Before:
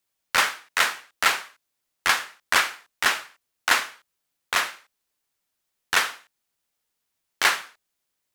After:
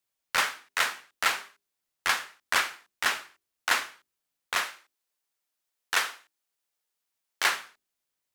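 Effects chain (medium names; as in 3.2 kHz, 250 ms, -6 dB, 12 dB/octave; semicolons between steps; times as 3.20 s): 4.61–7.46 s: tone controls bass -8 dB, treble +1 dB; hum notches 50/100/150/200/250/300/350/400 Hz; trim -5 dB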